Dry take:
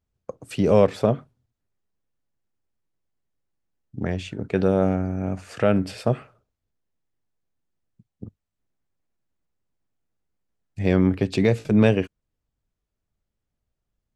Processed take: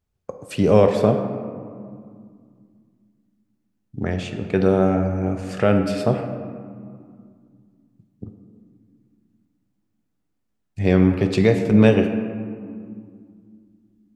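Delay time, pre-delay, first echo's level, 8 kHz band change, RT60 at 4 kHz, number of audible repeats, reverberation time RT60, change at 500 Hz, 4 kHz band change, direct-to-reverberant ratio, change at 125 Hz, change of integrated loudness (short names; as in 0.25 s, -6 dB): none, 3 ms, none, n/a, 1.0 s, none, 2.2 s, +3.5 dB, +2.5 dB, 5.0 dB, +3.0 dB, +2.5 dB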